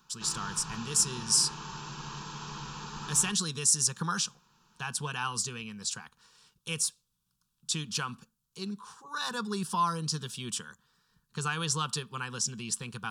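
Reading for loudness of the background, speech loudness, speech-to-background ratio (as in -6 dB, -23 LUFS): -41.0 LUFS, -30.5 LUFS, 10.5 dB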